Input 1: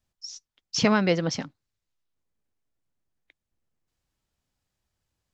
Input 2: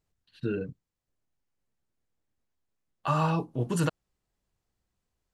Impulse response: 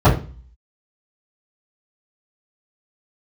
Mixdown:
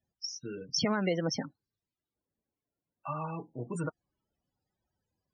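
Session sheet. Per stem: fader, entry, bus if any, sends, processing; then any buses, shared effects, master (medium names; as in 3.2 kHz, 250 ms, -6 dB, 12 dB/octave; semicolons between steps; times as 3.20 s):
+1.5 dB, 0.00 s, no send, peak limiter -12 dBFS, peak gain reduction 4 dB
-8.0 dB, 0.00 s, no send, level rider gain up to 4.5 dB; auto duck -6 dB, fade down 0.85 s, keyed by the first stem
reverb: none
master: loudest bins only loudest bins 32; high-pass 160 Hz 6 dB/octave; compression 2:1, threshold -30 dBFS, peak gain reduction 7 dB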